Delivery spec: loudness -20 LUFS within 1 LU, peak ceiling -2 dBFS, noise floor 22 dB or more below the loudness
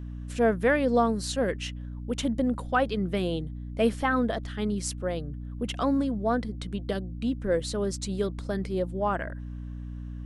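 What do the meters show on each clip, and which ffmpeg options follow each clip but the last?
hum 60 Hz; harmonics up to 300 Hz; hum level -35 dBFS; loudness -28.5 LUFS; peak -12.0 dBFS; loudness target -20.0 LUFS
-> -af "bandreject=f=60:t=h:w=6,bandreject=f=120:t=h:w=6,bandreject=f=180:t=h:w=6,bandreject=f=240:t=h:w=6,bandreject=f=300:t=h:w=6"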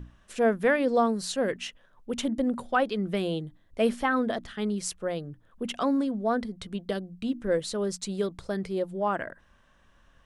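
hum none; loudness -29.0 LUFS; peak -12.0 dBFS; loudness target -20.0 LUFS
-> -af "volume=9dB"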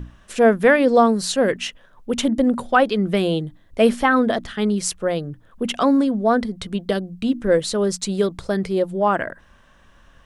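loudness -20.0 LUFS; peak -3.0 dBFS; noise floor -53 dBFS

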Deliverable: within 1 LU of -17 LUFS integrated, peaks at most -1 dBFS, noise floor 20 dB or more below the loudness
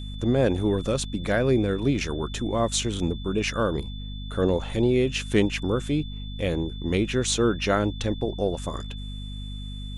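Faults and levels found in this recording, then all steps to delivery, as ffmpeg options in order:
hum 50 Hz; harmonics up to 250 Hz; hum level -32 dBFS; steady tone 3500 Hz; tone level -43 dBFS; loudness -25.5 LUFS; peak -8.0 dBFS; loudness target -17.0 LUFS
-> -af "bandreject=f=50:t=h:w=6,bandreject=f=100:t=h:w=6,bandreject=f=150:t=h:w=6,bandreject=f=200:t=h:w=6,bandreject=f=250:t=h:w=6"
-af "bandreject=f=3.5k:w=30"
-af "volume=8.5dB,alimiter=limit=-1dB:level=0:latency=1"

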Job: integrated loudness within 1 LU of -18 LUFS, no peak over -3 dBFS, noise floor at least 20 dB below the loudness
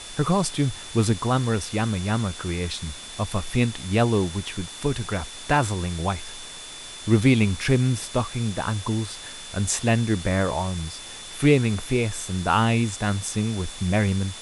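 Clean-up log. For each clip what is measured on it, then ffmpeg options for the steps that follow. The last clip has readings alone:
steady tone 3500 Hz; tone level -41 dBFS; noise floor -39 dBFS; noise floor target -45 dBFS; loudness -24.5 LUFS; peak -5.5 dBFS; loudness target -18.0 LUFS
-> -af "bandreject=f=3.5k:w=30"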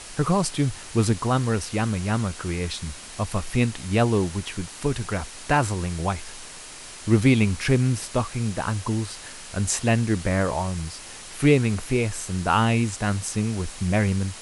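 steady tone none; noise floor -41 dBFS; noise floor target -45 dBFS
-> -af "afftdn=nr=6:nf=-41"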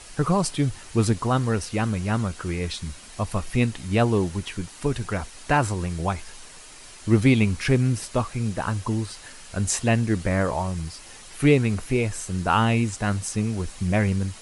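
noise floor -44 dBFS; noise floor target -45 dBFS
-> -af "afftdn=nr=6:nf=-44"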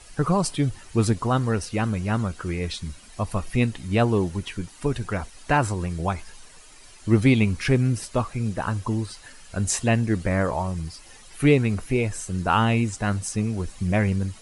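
noise floor -47 dBFS; loudness -24.5 LUFS; peak -6.0 dBFS; loudness target -18.0 LUFS
-> -af "volume=6.5dB,alimiter=limit=-3dB:level=0:latency=1"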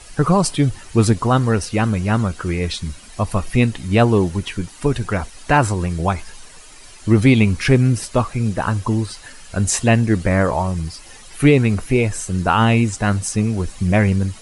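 loudness -18.5 LUFS; peak -3.0 dBFS; noise floor -41 dBFS

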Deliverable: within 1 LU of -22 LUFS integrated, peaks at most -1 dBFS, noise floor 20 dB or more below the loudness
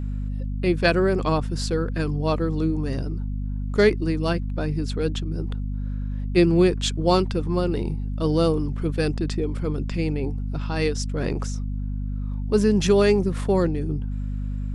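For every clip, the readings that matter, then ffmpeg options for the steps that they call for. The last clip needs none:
hum 50 Hz; harmonics up to 250 Hz; hum level -25 dBFS; loudness -24.0 LUFS; peak -5.5 dBFS; loudness target -22.0 LUFS
-> -af "bandreject=f=50:t=h:w=6,bandreject=f=100:t=h:w=6,bandreject=f=150:t=h:w=6,bandreject=f=200:t=h:w=6,bandreject=f=250:t=h:w=6"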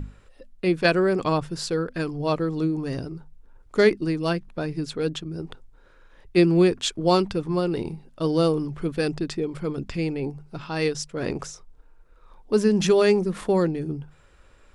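hum none; loudness -24.0 LUFS; peak -6.5 dBFS; loudness target -22.0 LUFS
-> -af "volume=2dB"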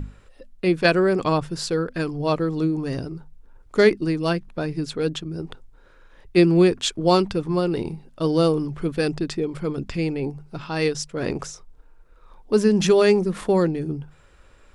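loudness -22.0 LUFS; peak -4.5 dBFS; noise floor -52 dBFS

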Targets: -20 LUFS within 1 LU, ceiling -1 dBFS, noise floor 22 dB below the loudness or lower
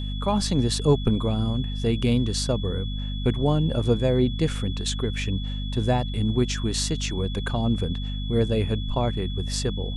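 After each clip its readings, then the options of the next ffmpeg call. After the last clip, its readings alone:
hum 50 Hz; harmonics up to 250 Hz; hum level -27 dBFS; steady tone 3400 Hz; tone level -38 dBFS; loudness -25.0 LUFS; peak -8.0 dBFS; loudness target -20.0 LUFS
-> -af "bandreject=f=50:t=h:w=4,bandreject=f=100:t=h:w=4,bandreject=f=150:t=h:w=4,bandreject=f=200:t=h:w=4,bandreject=f=250:t=h:w=4"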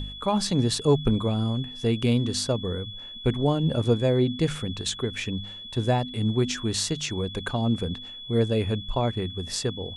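hum none; steady tone 3400 Hz; tone level -38 dBFS
-> -af "bandreject=f=3.4k:w=30"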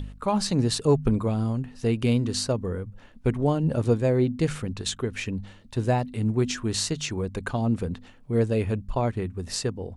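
steady tone none; loudness -26.5 LUFS; peak -9.5 dBFS; loudness target -20.0 LUFS
-> -af "volume=6.5dB"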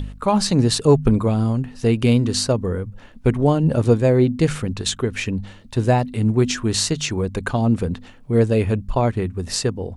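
loudness -20.0 LUFS; peak -3.0 dBFS; noise floor -44 dBFS

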